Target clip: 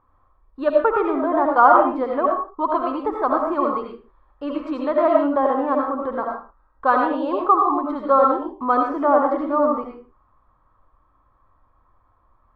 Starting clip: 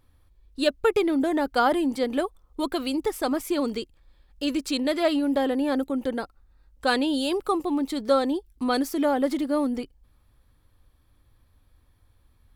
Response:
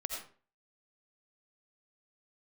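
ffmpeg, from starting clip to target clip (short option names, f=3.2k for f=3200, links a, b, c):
-filter_complex "[0:a]lowpass=f=1.1k:t=q:w=6,lowshelf=f=270:g=-8[a];[1:a]atrim=start_sample=2205,afade=t=out:st=0.34:d=0.01,atrim=end_sample=15435[b];[a][b]afir=irnorm=-1:irlink=0,volume=3dB"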